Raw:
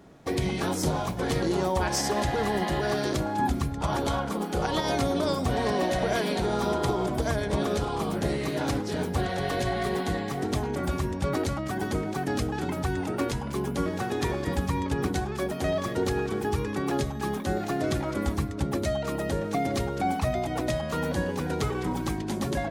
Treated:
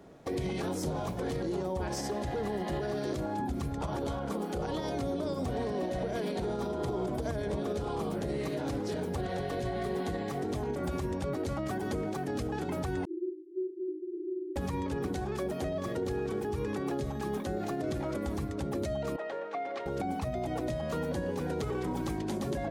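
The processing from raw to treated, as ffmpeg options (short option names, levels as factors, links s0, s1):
-filter_complex "[0:a]asettb=1/sr,asplit=3[s0][s1][s2];[s0]atrim=end=13.054[s3];[s1]atrim=start=13.05:end=14.56,asetpts=PTS-STARTPTS,afade=t=in:d=0.004:c=qsin,afade=t=out:st=1.506:d=0.004:c=qsin,asuperpass=centerf=350:order=12:qfactor=4.7[s4];[s2]atrim=start=14.556[s5];[s3][s4]acrossfade=d=0.004:c1=hsin:c2=qsin[s6];[s6][s5]acrossfade=d=0.004:c1=qsin:c2=hsin,asettb=1/sr,asplit=3[s7][s8][s9];[s7]atrim=end=19.164[s10];[s8]atrim=start=19.16:end=19.86,asetpts=PTS-STARTPTS,afade=t=in:d=0.004:c=qsin,afade=t=out:st=0.696:d=0.004:c=qsin,highpass=720,lowpass=2500[s11];[s9]atrim=start=19.856[s12];[s10][s11]acrossfade=d=0.004:c1=hsin:c2=qsin[s13];[s13][s12]acrossfade=d=0.004:c1=qsin:c2=hsin,equalizer=f=500:w=1.2:g=5.5,acrossover=split=390[s14][s15];[s15]acompressor=threshold=0.0316:ratio=6[s16];[s14][s16]amix=inputs=2:normalize=0,alimiter=limit=0.0841:level=0:latency=1:release=59,volume=0.668"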